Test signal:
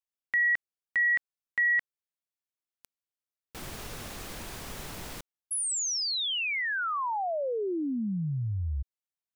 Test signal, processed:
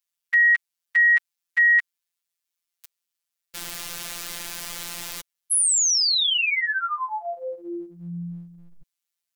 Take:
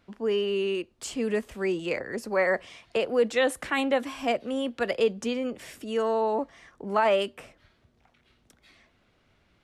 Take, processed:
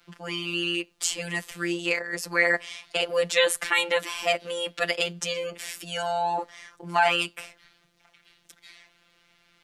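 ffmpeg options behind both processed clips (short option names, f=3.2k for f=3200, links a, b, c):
-af "afftfilt=real='hypot(re,im)*cos(PI*b)':imag='0':win_size=1024:overlap=0.75,tiltshelf=f=1.1k:g=-7.5,volume=6.5dB"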